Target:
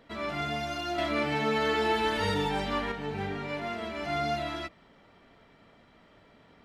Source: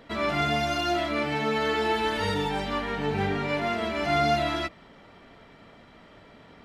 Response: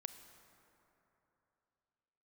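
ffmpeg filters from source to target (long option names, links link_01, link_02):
-filter_complex "[0:a]asettb=1/sr,asplit=3[link_01][link_02][link_03];[link_01]atrim=end=0.984[link_04];[link_02]atrim=start=0.98:end=2.92,asetpts=PTS-STARTPTS,afade=type=in:duration=0.004:curve=qsin,afade=type=out:start_time=1.936:duration=0.004:curve=qsin,acontrast=47[link_05];[link_03]atrim=start=2.916[link_06];[link_04][link_05]acrossfade=duration=0.004:curve1=hsin:curve2=qsin[link_07];[link_07][link_06]acrossfade=duration=0.004:curve1=qsin:curve2=hsin,volume=-7dB"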